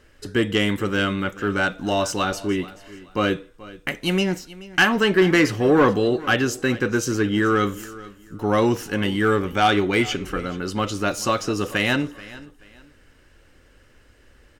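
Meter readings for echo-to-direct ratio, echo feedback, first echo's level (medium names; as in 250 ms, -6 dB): -18.5 dB, 29%, -19.0 dB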